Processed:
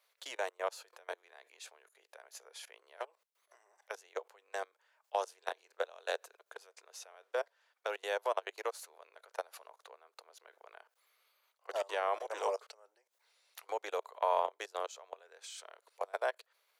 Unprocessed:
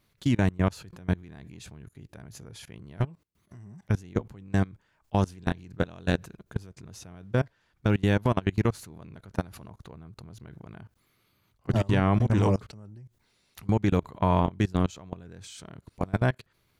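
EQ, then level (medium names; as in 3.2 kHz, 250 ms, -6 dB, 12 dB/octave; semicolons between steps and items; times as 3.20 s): steep high-pass 480 Hz 48 dB/octave; dynamic bell 2.1 kHz, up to -5 dB, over -46 dBFS, Q 0.79; -2.5 dB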